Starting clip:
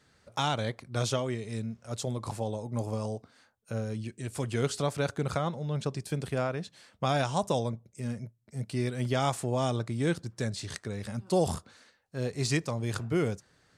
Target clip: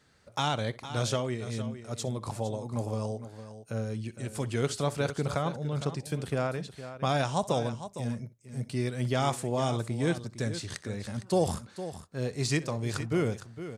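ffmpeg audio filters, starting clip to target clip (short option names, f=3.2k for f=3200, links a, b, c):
-af "aecho=1:1:63|459:0.106|0.251"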